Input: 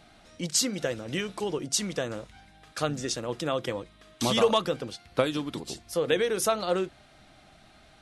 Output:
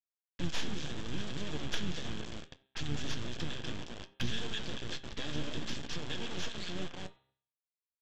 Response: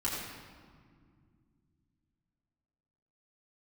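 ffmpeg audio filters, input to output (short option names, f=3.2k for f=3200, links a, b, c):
-filter_complex "[0:a]agate=range=-33dB:threshold=-51dB:ratio=3:detection=peak,acompressor=threshold=-37dB:ratio=3,firequalizer=gain_entry='entry(160,0);entry(330,-4);entry(680,-29);entry(1900,-16);entry(3000,-12);entry(5600,1)':delay=0.05:min_phase=1,asplit=2[a][b];[b]adelay=220,lowpass=f=1.3k:p=1,volume=-6.5dB,asplit=2[c][d];[d]adelay=220,lowpass=f=1.3k:p=1,volume=0.3,asplit=2[e][f];[f]adelay=220,lowpass=f=1.3k:p=1,volume=0.3,asplit=2[g][h];[h]adelay=220,lowpass=f=1.3k:p=1,volume=0.3[i];[a][c][e][g][i]amix=inputs=5:normalize=0,aresample=16000,acrusher=bits=5:dc=4:mix=0:aa=0.000001,aresample=44100,bandreject=f=132.5:t=h:w=4,bandreject=f=265:t=h:w=4,bandreject=f=397.5:t=h:w=4,bandreject=f=530:t=h:w=4,bandreject=f=662.5:t=h:w=4,bandreject=f=795:t=h:w=4,bandreject=f=927.5:t=h:w=4,bandreject=f=1.06k:t=h:w=4,bandreject=f=1.1925k:t=h:w=4,bandreject=f=1.325k:t=h:w=4,bandreject=f=1.4575k:t=h:w=4,bandreject=f=1.59k:t=h:w=4,bandreject=f=1.7225k:t=h:w=4,bandreject=f=1.855k:t=h:w=4,bandreject=f=1.9875k:t=h:w=4,bandreject=f=2.12k:t=h:w=4,bandreject=f=2.2525k:t=h:w=4,bandreject=f=2.385k:t=h:w=4,bandreject=f=2.5175k:t=h:w=4,bandreject=f=2.65k:t=h:w=4,bandreject=f=2.7825k:t=h:w=4,bandreject=f=2.915k:t=h:w=4,bandreject=f=3.0475k:t=h:w=4,bandreject=f=3.18k:t=h:w=4,bandreject=f=3.3125k:t=h:w=4,bandreject=f=3.445k:t=h:w=4,bandreject=f=3.5775k:t=h:w=4,bandreject=f=3.71k:t=h:w=4,bandreject=f=3.8425k:t=h:w=4,bandreject=f=3.975k:t=h:w=4,bandreject=f=4.1075k:t=h:w=4,asplit=2[j][k];[1:a]atrim=start_sample=2205,atrim=end_sample=4410,highshelf=f=2.1k:g=-3[l];[k][l]afir=irnorm=-1:irlink=0,volume=-24dB[m];[j][m]amix=inputs=2:normalize=0,acrossover=split=4500[n][o];[o]acompressor=threshold=-54dB:ratio=4:attack=1:release=60[p];[n][p]amix=inputs=2:normalize=0,asoftclip=type=tanh:threshold=-34dB,flanger=delay=6.6:depth=7.5:regen=57:speed=0.67:shape=sinusoidal,equalizer=f=3.3k:t=o:w=0.38:g=13.5,asplit=3[q][r][s];[r]asetrate=22050,aresample=44100,atempo=2,volume=-6dB[t];[s]asetrate=35002,aresample=44100,atempo=1.25992,volume=-7dB[u];[q][t][u]amix=inputs=3:normalize=0,volume=10dB"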